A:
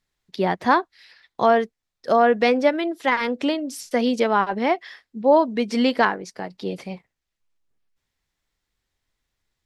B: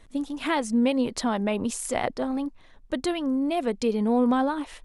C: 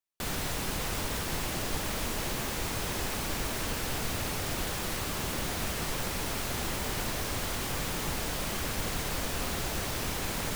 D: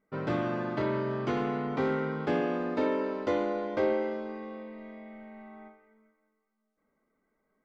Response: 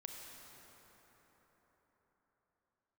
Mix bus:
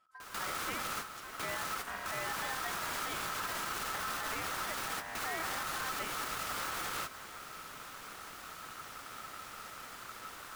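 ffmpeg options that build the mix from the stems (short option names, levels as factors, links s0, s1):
-filter_complex "[0:a]volume=0.2,asplit=2[s0][s1];[1:a]acompressor=threshold=0.0251:ratio=2,volume=0.126[s2];[2:a]volume=1.41,asplit=2[s3][s4];[s4]volume=0.237[s5];[3:a]adelay=1600,volume=0.282[s6];[s1]apad=whole_len=465420[s7];[s3][s7]sidechaingate=range=0.0224:threshold=0.00126:ratio=16:detection=peak[s8];[4:a]atrim=start_sample=2205[s9];[s5][s9]afir=irnorm=-1:irlink=0[s10];[s0][s2][s8][s6][s10]amix=inputs=5:normalize=0,aeval=exprs='val(0)*sin(2*PI*1300*n/s)':c=same,alimiter=level_in=1.33:limit=0.0631:level=0:latency=1:release=101,volume=0.75"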